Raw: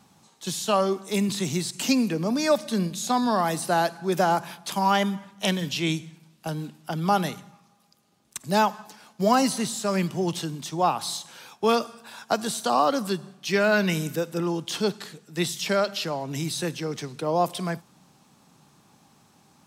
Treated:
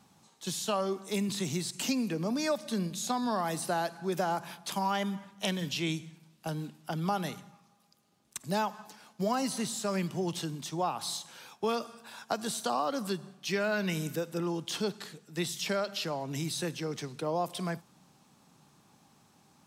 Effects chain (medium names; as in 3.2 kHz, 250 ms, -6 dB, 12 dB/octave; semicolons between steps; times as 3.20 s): compression 2.5:1, threshold -24 dBFS, peak gain reduction 6.5 dB; trim -4.5 dB